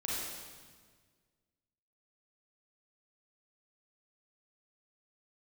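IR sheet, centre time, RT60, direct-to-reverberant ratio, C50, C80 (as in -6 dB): 114 ms, 1.6 s, -6.0 dB, -3.0 dB, 0.0 dB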